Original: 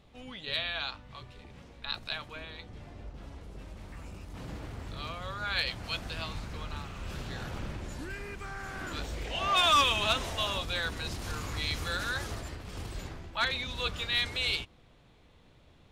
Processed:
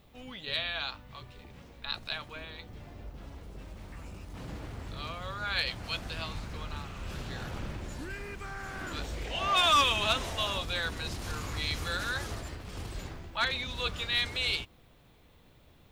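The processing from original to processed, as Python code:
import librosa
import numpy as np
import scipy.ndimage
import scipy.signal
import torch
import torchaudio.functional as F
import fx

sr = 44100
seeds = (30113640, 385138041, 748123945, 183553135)

y = fx.dmg_noise_colour(x, sr, seeds[0], colour='violet', level_db=-75.0)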